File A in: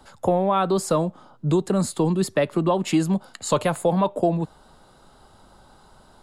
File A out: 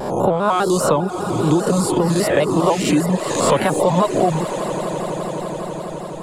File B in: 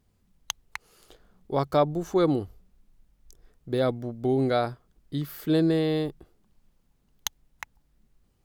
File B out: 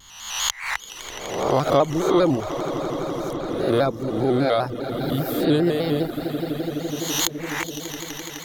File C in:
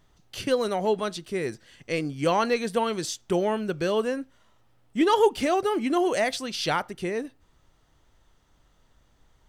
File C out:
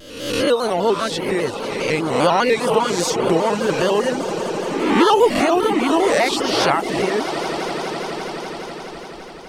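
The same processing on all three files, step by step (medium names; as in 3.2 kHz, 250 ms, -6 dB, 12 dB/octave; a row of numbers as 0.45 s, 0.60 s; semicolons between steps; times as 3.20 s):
reverse spectral sustain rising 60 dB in 0.87 s; echo with a slow build-up 84 ms, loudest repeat 8, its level -17 dB; in parallel at -1 dB: compression, threshold -28 dBFS; on the sum: reverb removal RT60 0.71 s; vibrato with a chosen wave square 5 Hz, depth 100 cents; peak normalisation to -3 dBFS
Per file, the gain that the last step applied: +1.5 dB, +2.0 dB, +3.5 dB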